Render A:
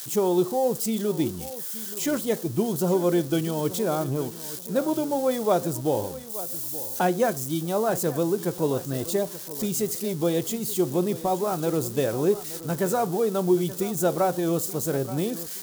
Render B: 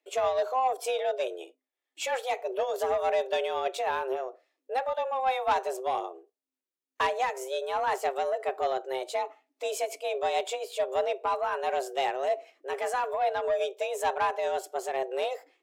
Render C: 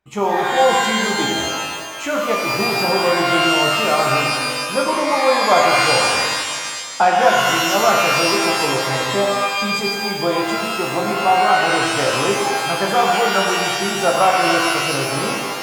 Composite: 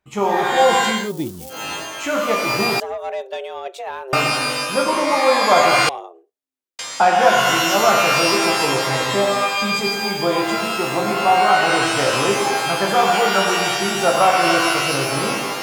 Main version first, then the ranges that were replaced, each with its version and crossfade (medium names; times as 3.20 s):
C
1.00–1.60 s: from A, crossfade 0.24 s
2.80–4.13 s: from B
5.89–6.79 s: from B